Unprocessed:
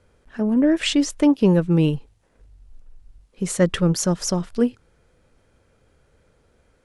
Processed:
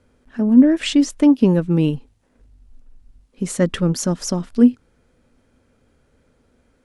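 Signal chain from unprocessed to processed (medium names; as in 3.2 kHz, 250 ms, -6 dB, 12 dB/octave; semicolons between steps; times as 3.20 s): peaking EQ 250 Hz +11.5 dB 0.35 oct; trim -1 dB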